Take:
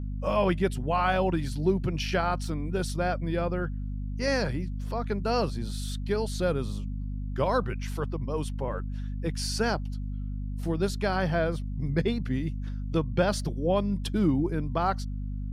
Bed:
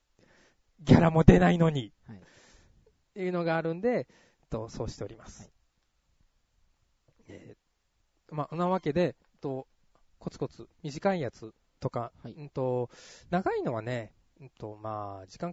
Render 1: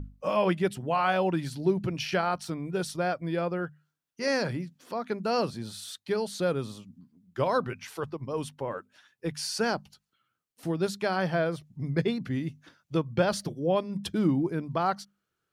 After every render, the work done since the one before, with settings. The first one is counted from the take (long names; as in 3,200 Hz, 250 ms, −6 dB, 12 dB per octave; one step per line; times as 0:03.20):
mains-hum notches 50/100/150/200/250 Hz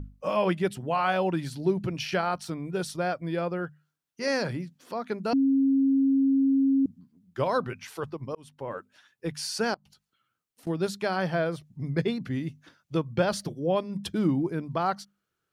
0:05.33–0:06.86: beep over 271 Hz −19 dBFS
0:08.35–0:08.75: fade in
0:09.74–0:10.67: downward compressor 12 to 1, threshold −52 dBFS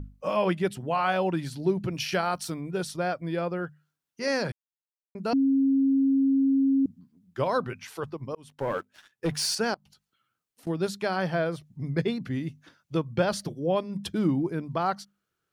0:01.91–0:02.59: high-shelf EQ 7,600 Hz → 4,800 Hz +10 dB
0:04.52–0:05.15: silence
0:08.49–0:09.55: leveller curve on the samples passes 2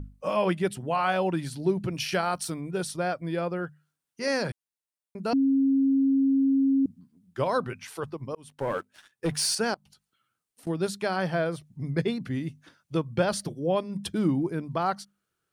parametric band 9,100 Hz +6.5 dB 0.33 octaves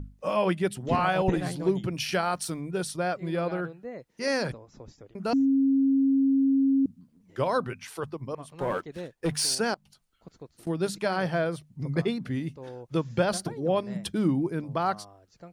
mix in bed −11.5 dB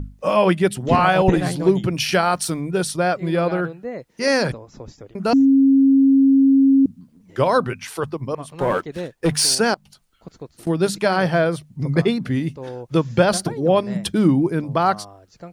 level +9 dB